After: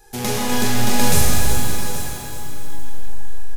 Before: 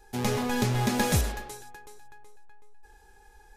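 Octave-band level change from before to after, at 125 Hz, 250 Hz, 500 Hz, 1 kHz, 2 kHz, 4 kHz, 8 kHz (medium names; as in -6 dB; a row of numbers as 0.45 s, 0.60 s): +6.0 dB, +6.0 dB, +6.0 dB, +7.5 dB, +8.0 dB, +11.0 dB, +13.5 dB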